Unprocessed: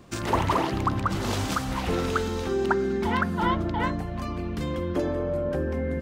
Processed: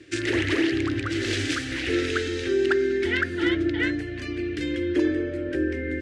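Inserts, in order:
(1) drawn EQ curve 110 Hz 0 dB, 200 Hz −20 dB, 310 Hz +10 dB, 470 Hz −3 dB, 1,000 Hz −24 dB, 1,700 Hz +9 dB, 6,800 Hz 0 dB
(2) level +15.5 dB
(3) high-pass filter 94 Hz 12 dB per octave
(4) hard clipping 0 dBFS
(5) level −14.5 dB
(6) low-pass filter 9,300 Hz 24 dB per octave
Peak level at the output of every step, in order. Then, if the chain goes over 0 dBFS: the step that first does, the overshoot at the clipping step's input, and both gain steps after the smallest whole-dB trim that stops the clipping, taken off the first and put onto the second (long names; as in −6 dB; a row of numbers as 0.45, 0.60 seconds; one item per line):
−10.0, +5.5, +6.0, 0.0, −14.5, −13.5 dBFS
step 2, 6.0 dB
step 2 +9.5 dB, step 5 −8.5 dB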